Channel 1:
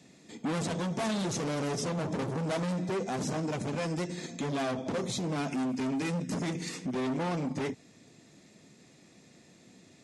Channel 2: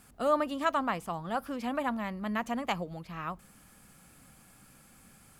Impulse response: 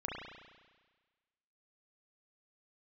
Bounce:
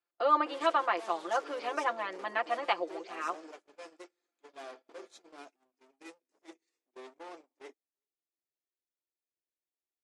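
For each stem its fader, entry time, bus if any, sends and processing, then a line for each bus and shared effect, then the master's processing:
−12.5 dB, 0.00 s, no send, echo send −23 dB, no processing
+1.0 dB, 0.00 s, no send, no echo send, elliptic low-pass filter 4,900 Hz; comb filter 5.8 ms, depth 86%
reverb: not used
echo: single-tap delay 372 ms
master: elliptic high-pass filter 330 Hz, stop band 70 dB; noise gate −47 dBFS, range −32 dB

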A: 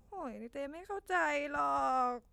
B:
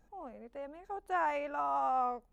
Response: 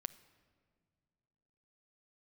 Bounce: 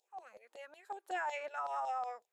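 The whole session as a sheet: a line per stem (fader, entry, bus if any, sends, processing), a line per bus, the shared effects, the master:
−7.0 dB, 0.00 s, no send, auto-filter high-pass saw down 5.4 Hz 550–4,400 Hz; parametric band 7,000 Hz +4 dB 0.26 octaves
−2.5 dB, 0.00 s, no send, brick-wall band-pass 340–1,000 Hz; expander for the loud parts 1.5 to 1, over −49 dBFS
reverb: not used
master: brickwall limiter −30 dBFS, peak gain reduction 9 dB

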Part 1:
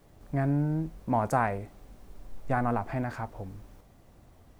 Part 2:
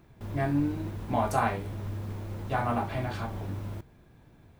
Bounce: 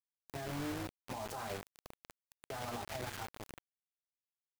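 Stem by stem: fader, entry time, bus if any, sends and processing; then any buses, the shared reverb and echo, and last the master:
+2.5 dB, 0.00 s, no send, high-pass filter 340 Hz 24 dB per octave; downward compressor 2 to 1, threshold −34 dBFS, peak gain reduction 7.5 dB; flanger 0.68 Hz, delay 1.3 ms, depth 5.9 ms, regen −20%
−0.5 dB, 0.00 s, no send, automatic ducking −8 dB, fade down 0.35 s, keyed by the first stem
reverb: not used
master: bit reduction 6 bits; brickwall limiter −35 dBFS, peak gain reduction 16 dB

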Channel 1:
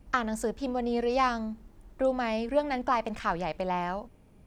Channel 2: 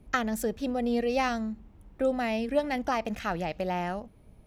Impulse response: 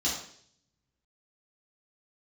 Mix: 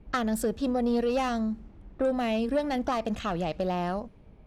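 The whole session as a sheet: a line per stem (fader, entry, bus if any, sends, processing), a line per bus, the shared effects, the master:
−2.0 dB, 0.00 s, no send, downward compressor, threshold −29 dBFS, peak gain reduction 9.5 dB
+1.0 dB, 0.00 s, no send, soft clipping −23 dBFS, distortion −15 dB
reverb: not used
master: low-pass that shuts in the quiet parts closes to 2,800 Hz, open at −24 dBFS

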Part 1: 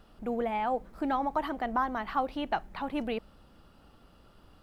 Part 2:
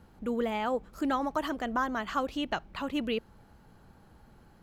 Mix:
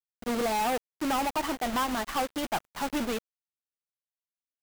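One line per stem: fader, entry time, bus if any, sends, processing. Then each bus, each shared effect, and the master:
−1.0 dB, 0.00 s, no send, no processing
0.0 dB, 12 ms, no send, downward compressor 16 to 1, threshold −31 dBFS, peak gain reduction 8 dB; automatic ducking −11 dB, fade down 0.60 s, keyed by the first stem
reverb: not used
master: log-companded quantiser 2 bits; expander for the loud parts 2.5 to 1, over −43 dBFS

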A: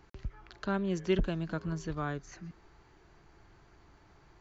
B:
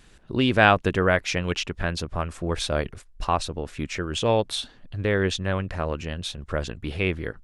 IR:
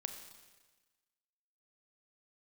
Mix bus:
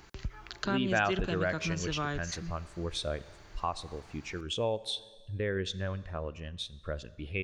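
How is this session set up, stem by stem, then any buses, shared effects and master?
+2.5 dB, 0.00 s, send −20.5 dB, no processing
−9.0 dB, 0.35 s, send −8 dB, every bin expanded away from the loudest bin 1.5 to 1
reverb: on, RT60 1.3 s, pre-delay 29 ms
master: high-shelf EQ 2,000 Hz +10.5 dB; downward compressor 2 to 1, threshold −31 dBFS, peak gain reduction 10 dB

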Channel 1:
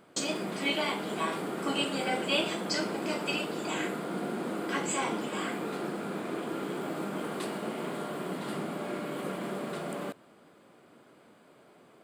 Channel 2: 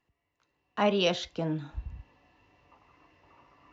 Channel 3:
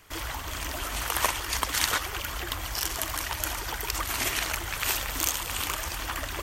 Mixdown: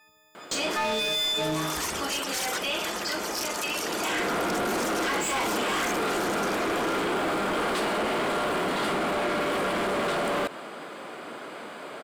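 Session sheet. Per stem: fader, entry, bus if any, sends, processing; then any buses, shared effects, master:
+2.0 dB, 0.35 s, no send, no echo send, automatic ducking −16 dB, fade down 1.20 s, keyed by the second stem
−4.0 dB, 0.00 s, no send, echo send −7 dB, every partial snapped to a pitch grid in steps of 6 semitones
−18.5 dB, 0.60 s, no send, no echo send, reverb reduction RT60 0.59 s; flat-topped bell 7,400 Hz +9.5 dB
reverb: not used
echo: repeating echo 77 ms, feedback 36%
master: mid-hump overdrive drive 27 dB, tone 4,400 Hz, clips at −13.5 dBFS; brickwall limiter −22.5 dBFS, peak gain reduction 9 dB

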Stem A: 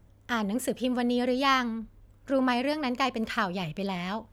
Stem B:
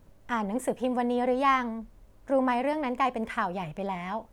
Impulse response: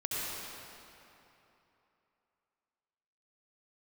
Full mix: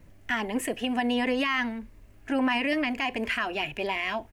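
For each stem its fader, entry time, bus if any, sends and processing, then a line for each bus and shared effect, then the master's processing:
−2.5 dB, 0.00 s, no send, flat-topped bell 2,200 Hz +13 dB 1 octave
+2.0 dB, 3 ms, no send, phaser whose notches keep moving one way rising 1.5 Hz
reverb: not used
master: brickwall limiter −17.5 dBFS, peak gain reduction 11.5 dB

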